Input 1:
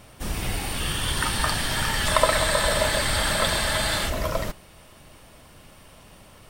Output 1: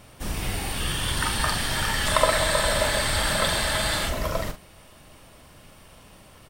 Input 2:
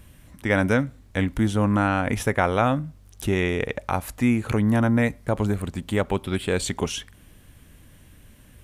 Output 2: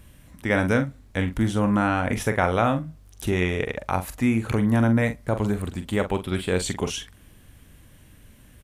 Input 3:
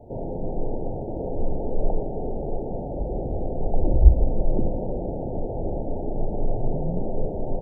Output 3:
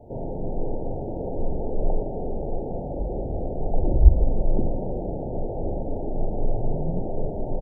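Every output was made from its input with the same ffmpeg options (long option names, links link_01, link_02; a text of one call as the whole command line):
ffmpeg -i in.wav -filter_complex "[0:a]asplit=2[link_01][link_02];[link_02]adelay=44,volume=-9dB[link_03];[link_01][link_03]amix=inputs=2:normalize=0,volume=-1dB" out.wav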